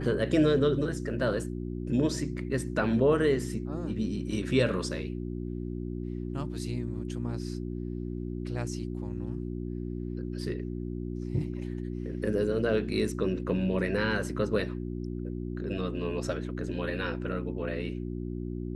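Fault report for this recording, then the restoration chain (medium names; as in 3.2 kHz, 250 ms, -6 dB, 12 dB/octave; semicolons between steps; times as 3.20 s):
hum 60 Hz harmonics 6 -35 dBFS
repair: de-hum 60 Hz, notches 6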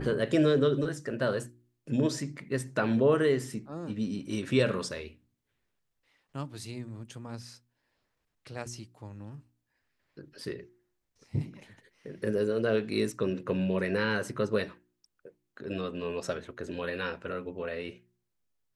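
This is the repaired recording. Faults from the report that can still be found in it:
nothing left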